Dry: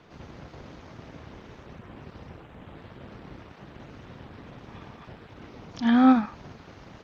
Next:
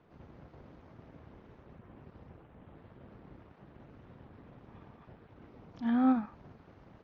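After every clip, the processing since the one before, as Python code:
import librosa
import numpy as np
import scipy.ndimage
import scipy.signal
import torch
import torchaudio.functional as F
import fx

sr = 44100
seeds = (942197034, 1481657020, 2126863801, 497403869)

y = fx.lowpass(x, sr, hz=1200.0, slope=6)
y = F.gain(torch.from_numpy(y), -8.5).numpy()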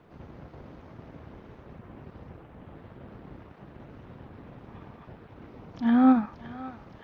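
y = fx.echo_thinned(x, sr, ms=567, feedback_pct=69, hz=850.0, wet_db=-12.0)
y = F.gain(torch.from_numpy(y), 7.5).numpy()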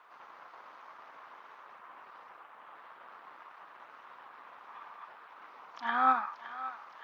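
y = fx.highpass_res(x, sr, hz=1100.0, q=2.6)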